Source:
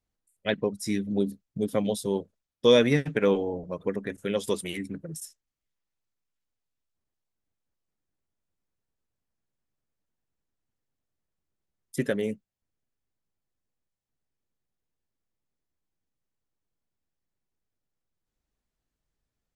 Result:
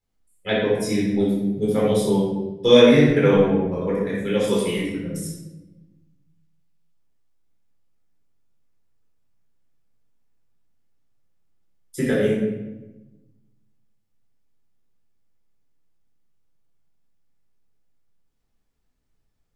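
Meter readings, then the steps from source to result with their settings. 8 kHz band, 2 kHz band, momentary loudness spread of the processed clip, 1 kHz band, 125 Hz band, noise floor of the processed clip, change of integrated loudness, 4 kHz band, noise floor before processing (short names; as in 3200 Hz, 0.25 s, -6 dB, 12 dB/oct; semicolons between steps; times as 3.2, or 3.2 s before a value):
+4.5 dB, +6.5 dB, 17 LU, +7.5 dB, +9.0 dB, -69 dBFS, +8.0 dB, +6.5 dB, under -85 dBFS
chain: shoebox room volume 520 m³, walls mixed, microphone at 4.1 m; gain -3 dB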